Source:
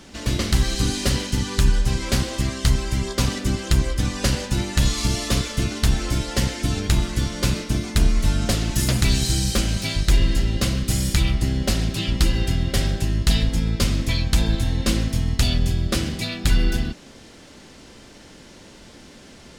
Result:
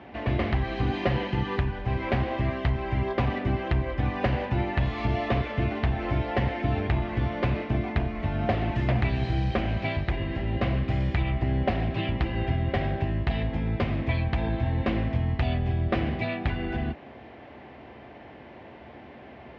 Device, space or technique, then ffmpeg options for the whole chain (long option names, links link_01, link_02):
bass amplifier: -filter_complex "[0:a]asettb=1/sr,asplit=3[link_01][link_02][link_03];[link_01]atrim=end=0.924[link_04];[link_02]atrim=start=0.92:end=1.57,asetpts=PTS-STARTPTS,afade=type=in:duration=0.004:curve=qsin,afade=type=out:start_time=0.646:duration=0.004:curve=qsin,aecho=1:1:5.8:0.65,atrim=end_sample=28665[link_05];[link_03]atrim=start=1.566[link_06];[link_04][link_05]acrossfade=duration=0.004:curve1=hsin:curve2=qsin[link_07];[link_07][link_06]acrossfade=duration=0.004:curve1=qsin:curve2=hsin,acompressor=threshold=-19dB:ratio=3,highpass=frequency=67:width=0.5412,highpass=frequency=67:width=1.3066,equalizer=frequency=100:width_type=q:width=4:gain=-4,equalizer=frequency=180:width_type=q:width=4:gain=-10,equalizer=frequency=280:width_type=q:width=4:gain=-4,equalizer=frequency=490:width_type=q:width=4:gain=-3,equalizer=frequency=720:width_type=q:width=4:gain=8,equalizer=frequency=1400:width_type=q:width=4:gain=-7,lowpass=frequency=2300:width=0.5412,lowpass=frequency=2300:width=1.3066,volume=2.5dB"